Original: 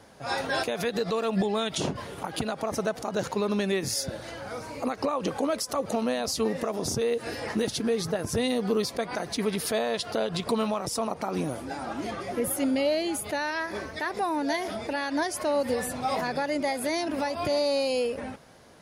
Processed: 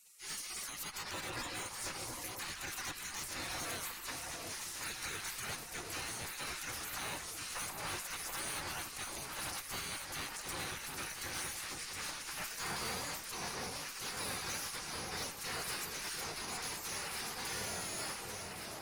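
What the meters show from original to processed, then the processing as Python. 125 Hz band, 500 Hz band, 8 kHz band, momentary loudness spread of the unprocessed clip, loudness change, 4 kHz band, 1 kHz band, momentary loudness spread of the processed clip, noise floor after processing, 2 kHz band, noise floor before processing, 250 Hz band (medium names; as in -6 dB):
-13.5 dB, -23.0 dB, -3.0 dB, 7 LU, -11.0 dB, -6.5 dB, -12.5 dB, 3 LU, -47 dBFS, -7.0 dB, -43 dBFS, -22.0 dB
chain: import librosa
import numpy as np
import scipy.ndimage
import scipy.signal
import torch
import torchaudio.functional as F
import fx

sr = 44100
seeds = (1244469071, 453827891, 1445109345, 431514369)

p1 = fx.spec_clip(x, sr, under_db=14)
p2 = fx.peak_eq(p1, sr, hz=88.0, db=10.0, octaves=0.69)
p3 = fx.hum_notches(p2, sr, base_hz=50, count=2)
p4 = fx.small_body(p3, sr, hz=(670.0, 980.0, 1800.0, 3000.0), ring_ms=65, db=7)
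p5 = fx.rider(p4, sr, range_db=10, speed_s=2.0)
p6 = fx.spec_gate(p5, sr, threshold_db=-20, keep='weak')
p7 = fx.tube_stage(p6, sr, drive_db=40.0, bias=0.4)
p8 = fx.peak_eq(p7, sr, hz=3300.0, db=-6.0, octaves=0.62)
p9 = p8 + fx.echo_alternate(p8, sr, ms=723, hz=1100.0, feedback_pct=71, wet_db=-2, dry=0)
y = p9 * 10.0 ** (4.0 / 20.0)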